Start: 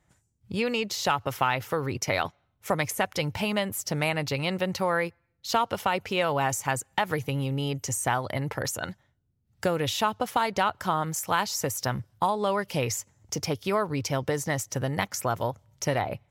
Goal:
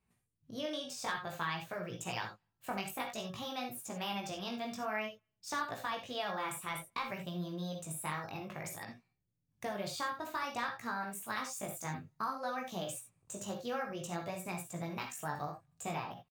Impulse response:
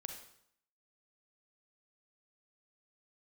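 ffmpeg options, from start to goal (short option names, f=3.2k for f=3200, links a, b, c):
-filter_complex "[0:a]asetrate=55563,aresample=44100,atempo=0.793701,flanger=delay=16.5:depth=4:speed=0.55[a];[1:a]atrim=start_sample=2205,atrim=end_sample=3969[b];[a][b]afir=irnorm=-1:irlink=0,volume=-5.5dB"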